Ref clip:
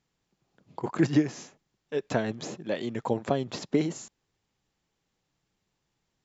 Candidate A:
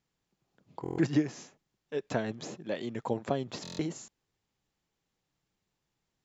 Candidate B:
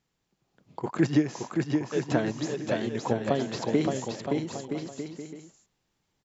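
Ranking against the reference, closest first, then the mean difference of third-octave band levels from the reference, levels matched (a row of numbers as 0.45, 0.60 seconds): A, B; 1.5, 4.0 decibels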